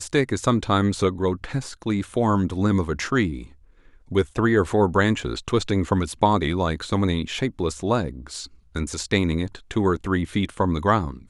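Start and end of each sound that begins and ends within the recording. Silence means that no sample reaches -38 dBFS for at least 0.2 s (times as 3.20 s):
4.11–8.46 s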